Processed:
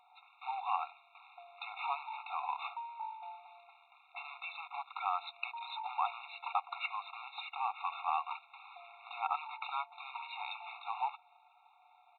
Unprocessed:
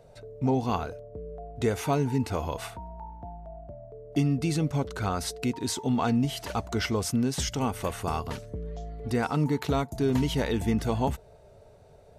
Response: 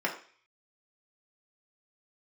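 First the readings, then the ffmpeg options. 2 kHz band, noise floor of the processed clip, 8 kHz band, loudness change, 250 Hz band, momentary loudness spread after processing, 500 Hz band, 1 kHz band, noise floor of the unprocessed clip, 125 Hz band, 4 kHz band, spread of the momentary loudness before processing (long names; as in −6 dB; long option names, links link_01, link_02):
−5.0 dB, −66 dBFS, below −40 dB, −11.0 dB, below −40 dB, 16 LU, −23.5 dB, −2.0 dB, −54 dBFS, below −40 dB, −10.5 dB, 16 LU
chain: -af "acompressor=threshold=-26dB:ratio=8,acrusher=bits=3:mode=log:mix=0:aa=0.000001,aresample=8000,aresample=44100,afftfilt=real='re*eq(mod(floor(b*sr/1024/710),2),1)':imag='im*eq(mod(floor(b*sr/1024/710),2),1)':win_size=1024:overlap=0.75,volume=2dB"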